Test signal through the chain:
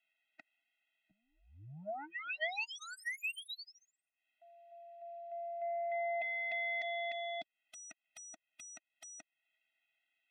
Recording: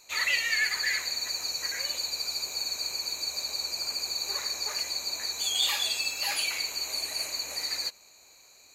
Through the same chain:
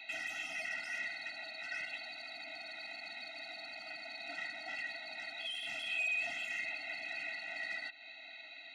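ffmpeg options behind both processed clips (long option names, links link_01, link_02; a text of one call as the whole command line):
ffmpeg -i in.wav -filter_complex "[0:a]aemphasis=mode=production:type=75kf,acrossover=split=2500[link_01][link_02];[link_02]acompressor=threshold=-33dB:ratio=4:attack=1:release=60[link_03];[link_01][link_03]amix=inputs=2:normalize=0,tiltshelf=frequency=710:gain=-5.5,alimiter=limit=-18dB:level=0:latency=1:release=16,acompressor=threshold=-36dB:ratio=3,highpass=frequency=290:width_type=q:width=0.5412,highpass=frequency=290:width_type=q:width=1.307,lowpass=frequency=3500:width_type=q:width=0.5176,lowpass=frequency=3500:width_type=q:width=0.7071,lowpass=frequency=3500:width_type=q:width=1.932,afreqshift=-110,aeval=exprs='0.0794*sin(PI/2*8.91*val(0)/0.0794)':channel_layout=same,asplit=3[link_04][link_05][link_06];[link_04]bandpass=frequency=530:width_type=q:width=8,volume=0dB[link_07];[link_05]bandpass=frequency=1840:width_type=q:width=8,volume=-6dB[link_08];[link_06]bandpass=frequency=2480:width_type=q:width=8,volume=-9dB[link_09];[link_07][link_08][link_09]amix=inputs=3:normalize=0,afftfilt=real='re*eq(mod(floor(b*sr/1024/310),2),0)':imag='im*eq(mod(floor(b*sr/1024/310),2),0)':win_size=1024:overlap=0.75,volume=2dB" out.wav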